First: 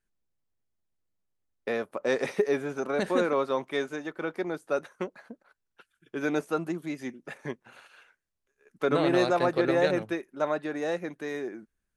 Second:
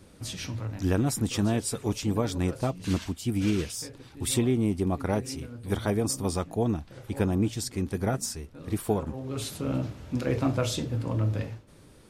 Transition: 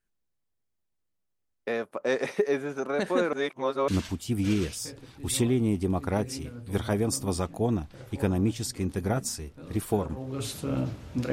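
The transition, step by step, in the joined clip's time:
first
3.33–3.88 s: reverse
3.88 s: go over to second from 2.85 s

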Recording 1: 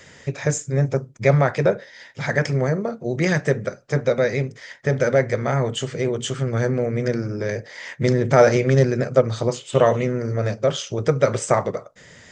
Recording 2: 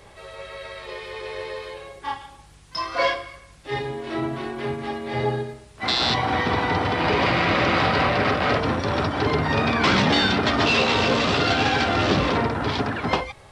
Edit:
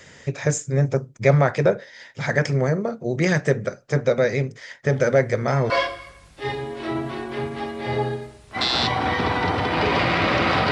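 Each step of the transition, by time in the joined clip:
recording 1
4.87 s: add recording 2 from 2.14 s 0.83 s -12.5 dB
5.70 s: go over to recording 2 from 2.97 s

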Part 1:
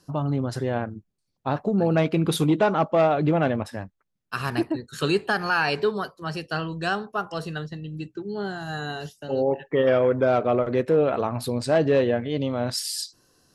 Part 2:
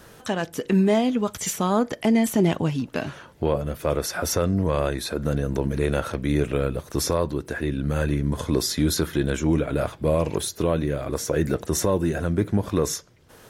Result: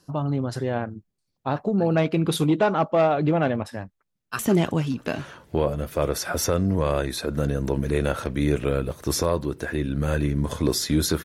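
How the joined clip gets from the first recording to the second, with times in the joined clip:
part 1
4.13–4.39 s: echo throw 160 ms, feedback 50%, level -11.5 dB
4.39 s: go over to part 2 from 2.27 s

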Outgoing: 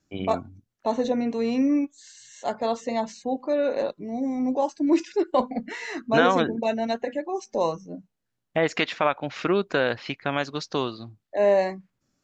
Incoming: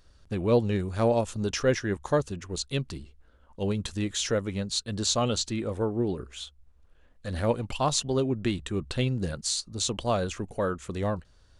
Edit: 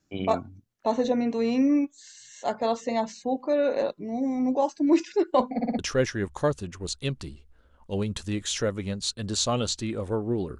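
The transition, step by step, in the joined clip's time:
outgoing
5.55 s: stutter in place 0.06 s, 4 plays
5.79 s: go over to incoming from 1.48 s

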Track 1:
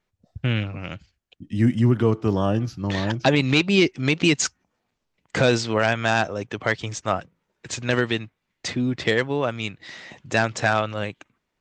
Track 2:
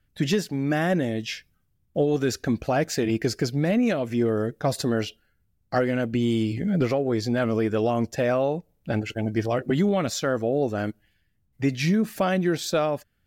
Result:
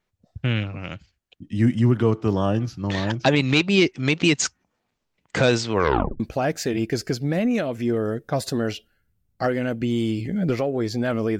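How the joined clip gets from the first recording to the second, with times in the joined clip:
track 1
5.73 s: tape stop 0.47 s
6.20 s: go over to track 2 from 2.52 s

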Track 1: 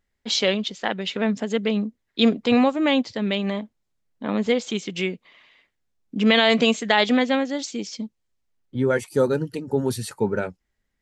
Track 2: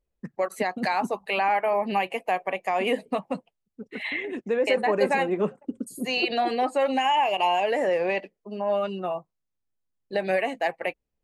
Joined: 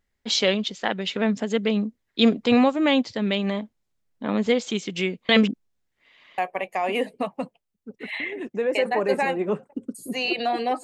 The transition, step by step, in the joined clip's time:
track 1
5.29–6.38 s: reverse
6.38 s: go over to track 2 from 2.30 s

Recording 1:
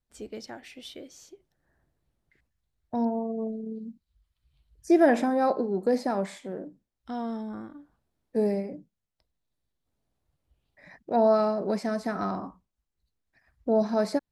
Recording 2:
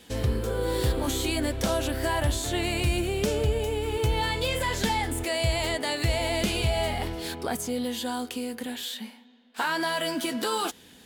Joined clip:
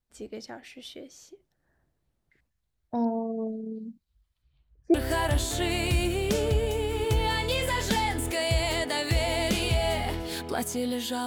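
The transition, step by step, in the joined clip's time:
recording 1
4.42–4.94 s: low-pass 6.7 kHz -> 1 kHz
4.94 s: go over to recording 2 from 1.87 s

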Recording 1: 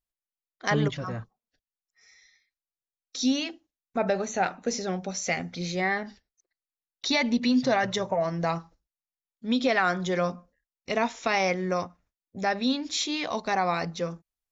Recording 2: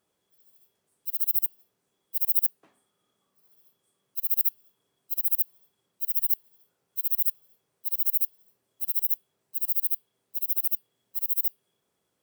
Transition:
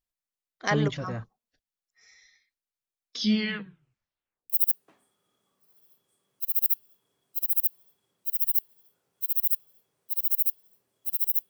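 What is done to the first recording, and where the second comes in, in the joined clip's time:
recording 1
3.05 s: tape stop 1.45 s
4.50 s: go over to recording 2 from 2.25 s

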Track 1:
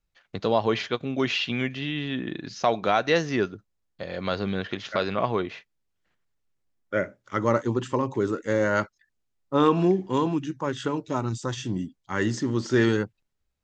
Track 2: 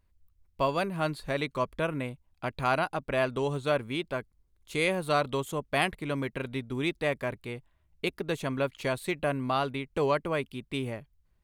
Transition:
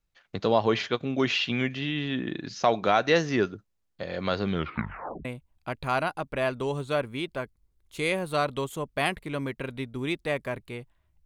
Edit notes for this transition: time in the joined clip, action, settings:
track 1
4.50 s: tape stop 0.75 s
5.25 s: go over to track 2 from 2.01 s

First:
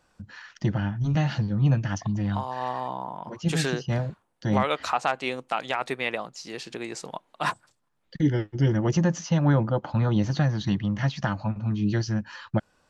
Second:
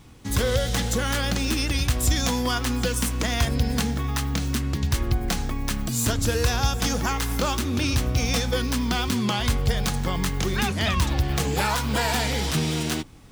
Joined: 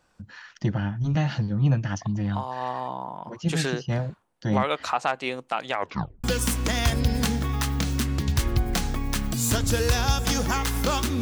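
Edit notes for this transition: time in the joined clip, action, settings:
first
5.71 s: tape stop 0.53 s
6.24 s: go over to second from 2.79 s

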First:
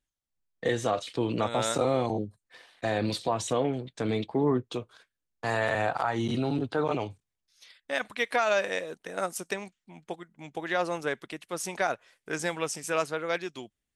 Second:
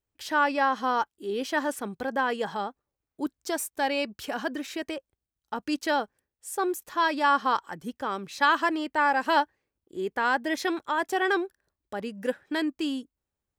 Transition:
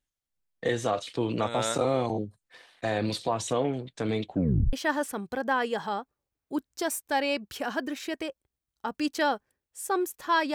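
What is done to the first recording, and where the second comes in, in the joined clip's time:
first
4.25 s: tape stop 0.48 s
4.73 s: go over to second from 1.41 s

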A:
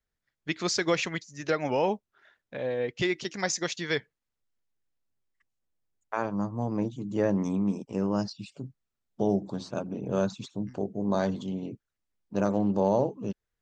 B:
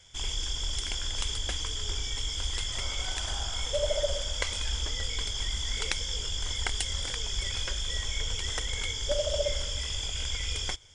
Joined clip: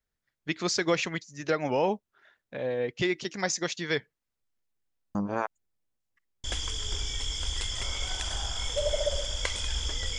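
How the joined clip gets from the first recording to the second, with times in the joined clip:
A
5.15–6.44 s: reverse
6.44 s: go over to B from 1.41 s

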